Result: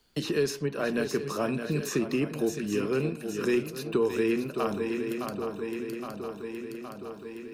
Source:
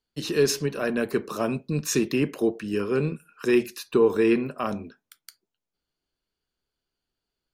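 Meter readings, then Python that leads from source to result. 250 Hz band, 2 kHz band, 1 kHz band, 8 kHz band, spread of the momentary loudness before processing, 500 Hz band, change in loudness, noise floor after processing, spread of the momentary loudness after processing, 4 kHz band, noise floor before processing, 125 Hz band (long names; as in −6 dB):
−3.0 dB, −2.5 dB, −2.0 dB, −6.5 dB, 8 LU, −3.5 dB, −5.0 dB, −43 dBFS, 10 LU, −4.0 dB, below −85 dBFS, −3.0 dB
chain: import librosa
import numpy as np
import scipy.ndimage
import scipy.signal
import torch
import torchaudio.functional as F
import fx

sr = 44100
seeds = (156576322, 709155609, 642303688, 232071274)

y = fx.echo_swing(x, sr, ms=817, ratio=3, feedback_pct=40, wet_db=-10.0)
y = fx.band_squash(y, sr, depth_pct=70)
y = y * 10.0 ** (-4.0 / 20.0)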